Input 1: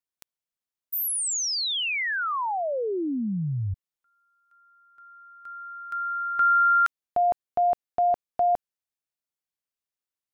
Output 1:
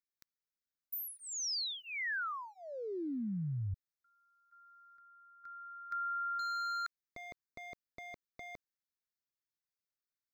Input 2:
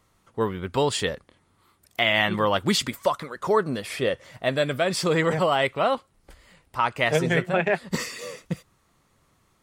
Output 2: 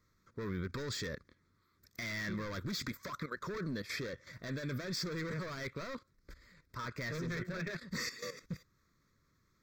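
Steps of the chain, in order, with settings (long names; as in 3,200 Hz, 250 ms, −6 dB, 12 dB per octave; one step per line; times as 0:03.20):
hard clipping −24.5 dBFS
output level in coarse steps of 12 dB
phaser with its sweep stopped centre 2,900 Hz, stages 6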